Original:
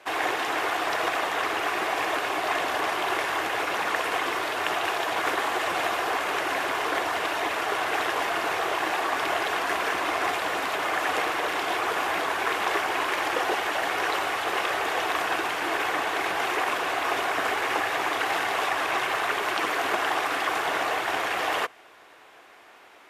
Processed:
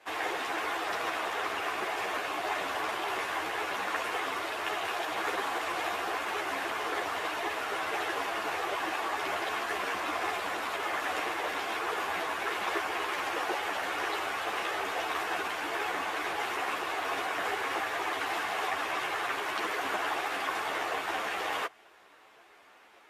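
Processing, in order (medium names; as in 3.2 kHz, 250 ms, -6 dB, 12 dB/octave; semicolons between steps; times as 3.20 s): three-phase chorus; trim -3 dB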